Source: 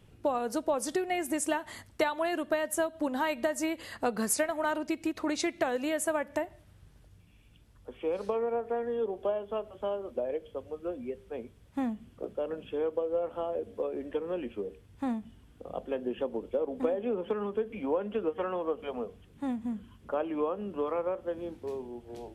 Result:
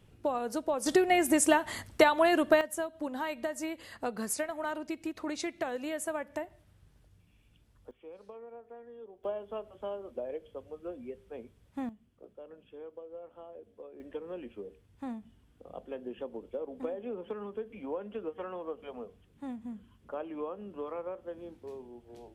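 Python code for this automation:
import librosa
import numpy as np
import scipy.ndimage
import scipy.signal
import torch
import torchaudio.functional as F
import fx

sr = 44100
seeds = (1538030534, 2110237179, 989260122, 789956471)

y = fx.gain(x, sr, db=fx.steps((0.0, -2.0), (0.86, 6.0), (2.61, -5.0), (7.91, -17.0), (9.24, -5.0), (11.89, -15.0), (14.0, -7.0)))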